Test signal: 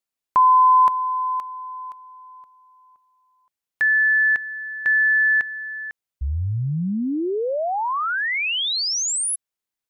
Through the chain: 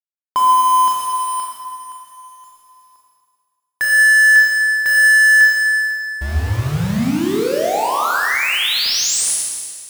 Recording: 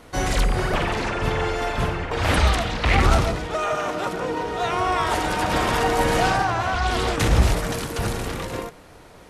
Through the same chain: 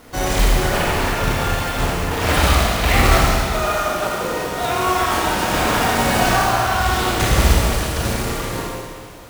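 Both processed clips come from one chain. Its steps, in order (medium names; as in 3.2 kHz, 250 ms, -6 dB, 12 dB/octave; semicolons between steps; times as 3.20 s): companded quantiser 4-bit; Schroeder reverb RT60 1.8 s, combs from 27 ms, DRR -2.5 dB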